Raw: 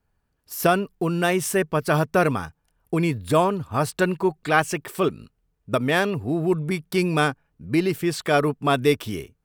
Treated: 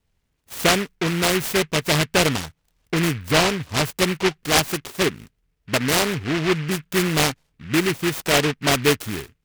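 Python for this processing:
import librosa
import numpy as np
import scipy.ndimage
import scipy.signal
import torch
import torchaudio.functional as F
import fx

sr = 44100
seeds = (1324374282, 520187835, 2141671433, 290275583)

y = fx.peak_eq(x, sr, hz=3000.0, db=5.5, octaves=0.29)
y = fx.noise_mod_delay(y, sr, seeds[0], noise_hz=1900.0, depth_ms=0.23)
y = y * 10.0 ** (1.0 / 20.0)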